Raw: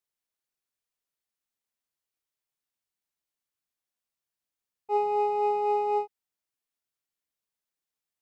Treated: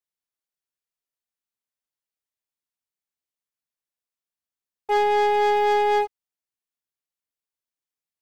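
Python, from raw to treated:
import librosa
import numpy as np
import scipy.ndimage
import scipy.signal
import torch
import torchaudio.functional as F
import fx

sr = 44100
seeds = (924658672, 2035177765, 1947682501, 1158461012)

y = fx.leveller(x, sr, passes=3)
y = F.gain(torch.from_numpy(y), 1.5).numpy()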